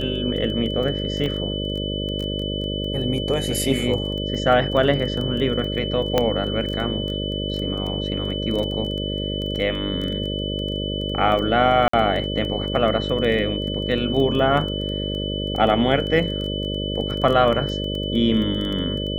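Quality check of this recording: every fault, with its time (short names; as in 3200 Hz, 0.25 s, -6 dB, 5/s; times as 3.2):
buzz 50 Hz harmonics 12 -27 dBFS
crackle 13/s -26 dBFS
tone 3000 Hz -29 dBFS
1.26 gap 2.1 ms
6.18 pop -5 dBFS
11.88–11.93 gap 54 ms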